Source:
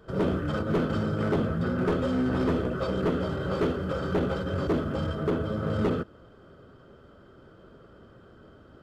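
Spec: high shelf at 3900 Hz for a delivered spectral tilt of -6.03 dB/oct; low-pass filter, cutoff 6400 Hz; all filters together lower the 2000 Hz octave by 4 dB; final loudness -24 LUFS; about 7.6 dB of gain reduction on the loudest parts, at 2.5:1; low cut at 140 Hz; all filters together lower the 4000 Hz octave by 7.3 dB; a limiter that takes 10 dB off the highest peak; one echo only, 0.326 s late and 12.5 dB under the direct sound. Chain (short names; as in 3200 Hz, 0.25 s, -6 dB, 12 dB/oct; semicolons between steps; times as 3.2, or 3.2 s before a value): HPF 140 Hz; LPF 6400 Hz; bell 2000 Hz -4 dB; high shelf 3900 Hz -6 dB; bell 4000 Hz -4.5 dB; compressor 2.5:1, threshold -34 dBFS; limiter -33 dBFS; echo 0.326 s -12.5 dB; gain +17 dB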